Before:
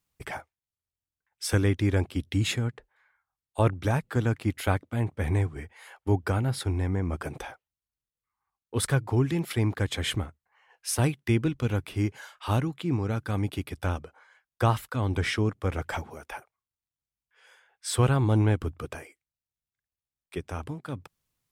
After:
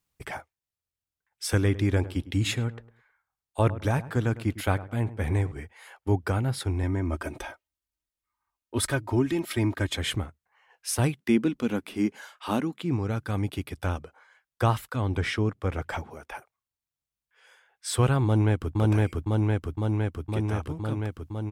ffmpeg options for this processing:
-filter_complex "[0:a]asettb=1/sr,asplit=3[s0][s1][s2];[s0]atrim=end=1.464[s3];[s1]atrim=start=1.46:end=5.52,asetpts=PTS-STARTPTS,afade=t=in:d=0.004:c=qsin,afade=t=out:st=4.056:d=0.004:c=qsin,asplit=2[s4][s5];[s5]adelay=104,lowpass=f=1400:p=1,volume=0.178,asplit=2[s6][s7];[s7]adelay=104,lowpass=f=1400:p=1,volume=0.28,asplit=2[s8][s9];[s9]adelay=104,lowpass=f=1400:p=1,volume=0.28[s10];[s4][s6][s8][s10]amix=inputs=4:normalize=0,atrim=end_sample=179046[s11];[s2]atrim=start=5.516[s12];[s3][s11]acrossfade=d=0.004:c1=hsin:c2=qsin[s13];[s13][s12]acrossfade=d=0.004:c1=qsin:c2=hsin,asettb=1/sr,asplit=3[s14][s15][s16];[s14]atrim=end=6.834[s17];[s15]atrim=start=6.83:end=9.97,asetpts=PTS-STARTPTS,afade=t=in:d=0.004:c=qsin,afade=t=out:st=3.136:d=0.004:c=qsin,aecho=1:1:3.2:0.65,atrim=end_sample=138474[s18];[s16]atrim=start=9.966[s19];[s17][s18]acrossfade=d=0.004:c1=hsin:c2=qsin[s20];[s20][s19]acrossfade=d=0.004:c1=qsin:c2=hsin,asettb=1/sr,asplit=3[s21][s22][s23];[s21]atrim=end=11.204[s24];[s22]atrim=start=11.2:end=12.82,asetpts=PTS-STARTPTS,afade=t=in:d=0.004:c=qsin,afade=t=out:st=1.616:d=0.004:c=qsin,lowshelf=f=160:t=q:w=3:g=-9.5[s25];[s23]atrim=start=12.816[s26];[s24][s25]acrossfade=d=0.004:c1=hsin:c2=qsin[s27];[s27][s26]acrossfade=d=0.004:c1=qsin:c2=hsin,asettb=1/sr,asplit=3[s28][s29][s30];[s28]atrim=end=15.024[s31];[s29]atrim=start=15.02:end=16.35,asetpts=PTS-STARTPTS,afade=t=in:d=0.004:c=qsin,afade=t=out:st=1.326:d=0.004:c=qsin,highshelf=f=5200:g=-5.5[s32];[s30]atrim=start=16.346[s33];[s31][s32]acrossfade=d=0.004:c1=hsin:c2=qsin[s34];[s34][s33]acrossfade=d=0.004:c1=qsin:c2=hsin,asplit=2[s35][s36];[s36]afade=t=in:st=18.24:d=0.01,afade=t=out:st=18.78:d=0.01,aecho=0:1:510|1020|1530|2040|2550|3060|3570|4080|4590|5100|5610|6120:1|0.8|0.64|0.512|0.4096|0.32768|0.262144|0.209715|0.167772|0.134218|0.107374|0.0858993[s37];[s35][s37]amix=inputs=2:normalize=0"

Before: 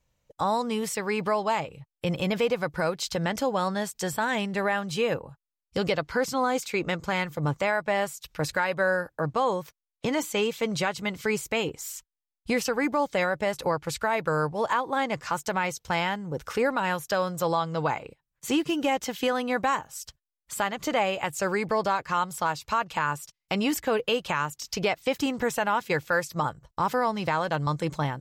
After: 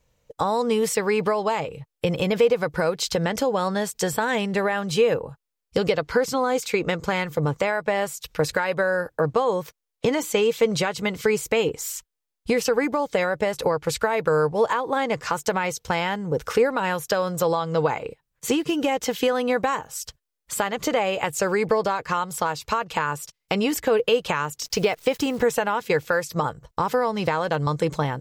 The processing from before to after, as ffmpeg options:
-filter_complex "[0:a]asettb=1/sr,asplit=3[s0][s1][s2];[s0]atrim=end=24.654[s3];[s1]atrim=start=24.65:end=25.42,asetpts=PTS-STARTPTS,afade=t=in:d=0.004:c=qsin,afade=t=out:st=0.766:d=0.004:c=qsin,acrusher=bits=9:dc=4:mix=0:aa=0.000001[s4];[s2]atrim=start=25.416[s5];[s3][s4]acrossfade=d=0.004:c1=hsin:c2=qsin[s6];[s6][s5]acrossfade=d=0.004:c1=qsin:c2=hsin,acompressor=threshold=0.0501:ratio=6,equalizer=f=460:w=4.5:g=7.5,volume=2"

